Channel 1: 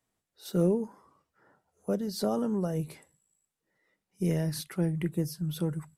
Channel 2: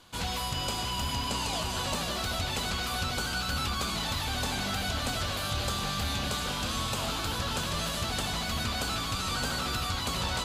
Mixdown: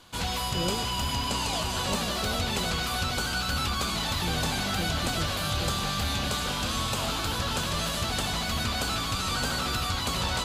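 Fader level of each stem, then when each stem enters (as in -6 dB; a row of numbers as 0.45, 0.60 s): -7.5, +2.5 dB; 0.00, 0.00 s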